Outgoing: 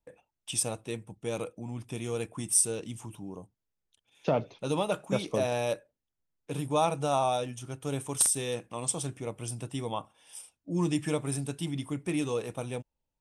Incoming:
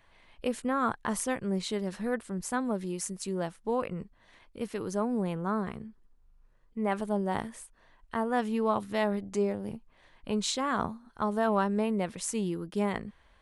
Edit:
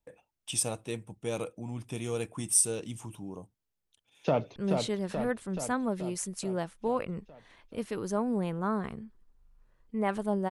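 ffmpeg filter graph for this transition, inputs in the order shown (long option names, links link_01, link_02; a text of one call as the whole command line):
ffmpeg -i cue0.wav -i cue1.wav -filter_complex "[0:a]apad=whole_dur=10.5,atrim=end=10.5,atrim=end=4.562[link_01];[1:a]atrim=start=1.388:end=7.33[link_02];[link_01][link_02]acrossfade=duration=0.004:curve1=hsin:curve2=hsin,asplit=2[link_03][link_04];[link_04]afade=type=in:start_time=4.2:duration=0.01,afade=type=out:start_time=4.56:duration=0.01,aecho=0:1:430|860|1290|1720|2150|2580|3010|3440|3870|4300:0.595662|0.38718|0.251667|0.163584|0.106329|0.0691141|0.0449242|0.0292007|0.0189805|0.0123373[link_05];[link_03][link_05]amix=inputs=2:normalize=0" out.wav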